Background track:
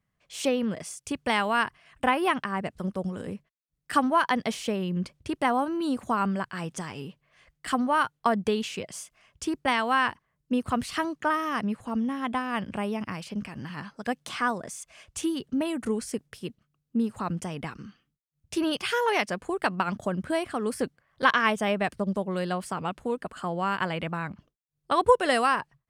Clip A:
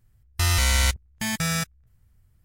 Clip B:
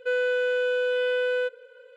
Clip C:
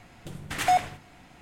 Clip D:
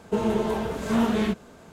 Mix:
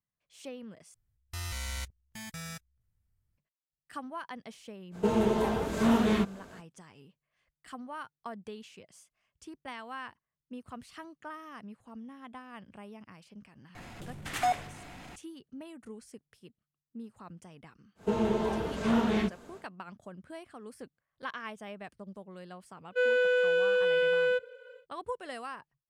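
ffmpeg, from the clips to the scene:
-filter_complex "[4:a]asplit=2[s0][s1];[0:a]volume=0.133[s2];[3:a]acompressor=mode=upward:threshold=0.0178:ratio=4:attack=3:release=31:knee=2.83:detection=peak[s3];[s1]acrossover=split=6800[s4][s5];[s5]acompressor=threshold=0.00112:ratio=4:attack=1:release=60[s6];[s4][s6]amix=inputs=2:normalize=0[s7];[s2]asplit=2[s8][s9];[s8]atrim=end=0.944[s10];[1:a]atrim=end=2.44,asetpts=PTS-STARTPTS,volume=0.15[s11];[s9]atrim=start=3.376[s12];[s0]atrim=end=1.72,asetpts=PTS-STARTPTS,volume=0.794,afade=t=in:d=0.05,afade=t=out:st=1.67:d=0.05,adelay=4910[s13];[s3]atrim=end=1.41,asetpts=PTS-STARTPTS,volume=0.501,afade=t=in:d=0.004:c=hsin,afade=t=out:st=1.406:d=0.004:c=hsin,adelay=13750[s14];[s7]atrim=end=1.72,asetpts=PTS-STARTPTS,volume=0.631,afade=t=in:d=0.1,afade=t=out:st=1.62:d=0.1,adelay=17950[s15];[2:a]atrim=end=1.96,asetpts=PTS-STARTPTS,volume=0.891,afade=t=in:d=0.1,afade=t=out:st=1.86:d=0.1,adelay=22900[s16];[s10][s11]acrossfade=d=0.004:c1=hsin:c2=hsin[s17];[s17][s12]acrossfade=d=0.004:c1=hsin:c2=hsin[s18];[s18][s13][s14][s15][s16]amix=inputs=5:normalize=0"

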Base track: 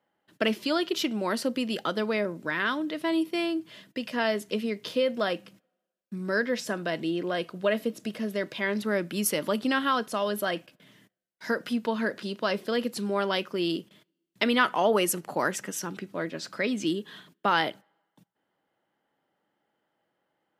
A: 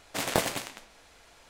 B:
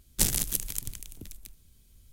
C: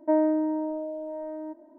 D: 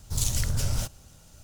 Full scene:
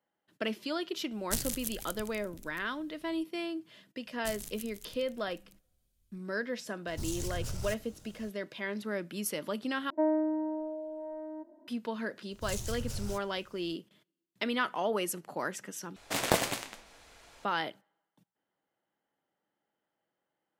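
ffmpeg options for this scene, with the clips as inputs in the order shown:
-filter_complex "[2:a]asplit=2[s0][s1];[4:a]asplit=2[s2][s3];[0:a]volume=0.398[s4];[s2]acompressor=threshold=0.0447:ratio=6:attack=3.2:release=140:knee=1:detection=peak[s5];[s4]asplit=3[s6][s7][s8];[s6]atrim=end=9.904[s9];[3:a]atrim=end=1.78,asetpts=PTS-STARTPTS,volume=0.531[s10];[s7]atrim=start=11.676:end=15.964[s11];[1:a]atrim=end=1.49,asetpts=PTS-STARTPTS,volume=0.944[s12];[s8]atrim=start=17.446[s13];[s0]atrim=end=2.12,asetpts=PTS-STARTPTS,volume=0.376,afade=t=in:d=0.004:c=hsin,afade=t=out:st=2.116:d=0.004:c=hsin,adelay=1120[s14];[s1]atrim=end=2.12,asetpts=PTS-STARTPTS,volume=0.141,afade=t=in:d=0.004:c=hsin,afade=t=out:st=2.116:d=0.004:c=hsin,adelay=4060[s15];[s5]atrim=end=1.43,asetpts=PTS-STARTPTS,volume=0.562,afade=t=in:d=0.004:c=hsin,afade=t=out:st=1.426:d=0.004:c=hsin,adelay=6870[s16];[s3]atrim=end=1.43,asetpts=PTS-STARTPTS,volume=0.266,afade=t=in:d=0.004:c=hsin,afade=t=out:st=1.426:d=0.004:c=hsin,adelay=12310[s17];[s9][s10]acrossfade=d=0.004:c1=hsin:c2=hsin[s18];[s18][s11]acrossfade=d=0.004:c1=hsin:c2=hsin[s19];[s19][s12]acrossfade=d=0.004:c1=hsin:c2=hsin[s20];[s20][s13]acrossfade=d=0.004:c1=hsin:c2=hsin[s21];[s21][s14][s15][s16][s17]amix=inputs=5:normalize=0"

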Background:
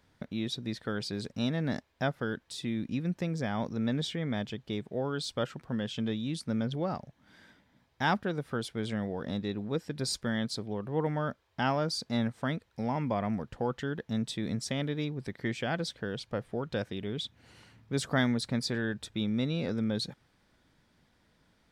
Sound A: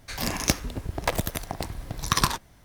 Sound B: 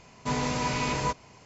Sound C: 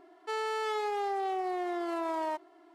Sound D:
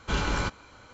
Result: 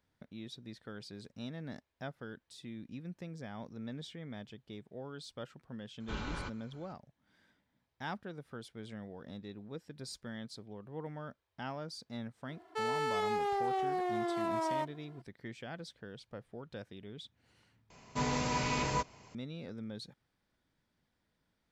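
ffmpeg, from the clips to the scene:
-filter_complex "[0:a]volume=0.237[s0];[4:a]acrossover=split=5000[s1][s2];[s2]acompressor=threshold=0.00316:ratio=4:attack=1:release=60[s3];[s1][s3]amix=inputs=2:normalize=0[s4];[s0]asplit=2[s5][s6];[s5]atrim=end=17.904[s7];[2:a]atrim=end=1.45,asetpts=PTS-STARTPTS,volume=0.596[s8];[s6]atrim=start=19.346[s9];[s4]atrim=end=0.93,asetpts=PTS-STARTPTS,volume=0.237,afade=t=in:d=0.004:c=hsin,afade=t=out:st=0.926:d=0.004:c=hsin,adelay=6000[s10];[3:a]atrim=end=2.74,asetpts=PTS-STARTPTS,volume=0.891,afade=t=in:d=0.004:c=hsin,afade=t=out:st=2.736:d=0.004:c=hsin,adelay=12480[s11];[s7][s8]acrossfade=d=0.004:c1=hsin:c2=hsin[s12];[s12][s9]acrossfade=d=0.004:c1=hsin:c2=hsin[s13];[s13][s10][s11]amix=inputs=3:normalize=0"

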